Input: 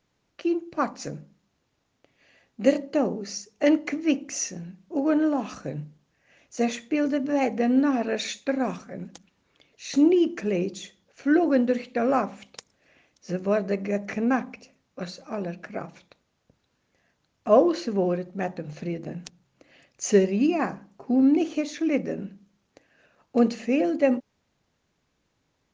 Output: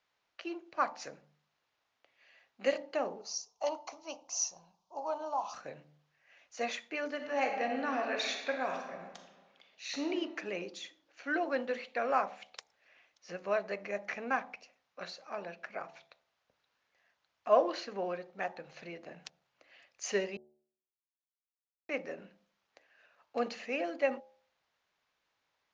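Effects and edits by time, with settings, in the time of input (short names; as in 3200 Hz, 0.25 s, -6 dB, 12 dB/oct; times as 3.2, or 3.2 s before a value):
3.21–5.54 EQ curve 110 Hz 0 dB, 230 Hz -13 dB, 440 Hz -10 dB, 680 Hz +1 dB, 980 Hz +8 dB, 1800 Hz -24 dB, 2900 Hz -9 dB, 4400 Hz 0 dB, 6200 Hz +6 dB, 11000 Hz -18 dB
7.09–10.09 reverb throw, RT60 1.4 s, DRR 3.5 dB
20.37–21.89 mute
whole clip: three-band isolator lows -19 dB, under 580 Hz, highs -17 dB, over 5600 Hz; de-hum 74.29 Hz, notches 12; gain -2.5 dB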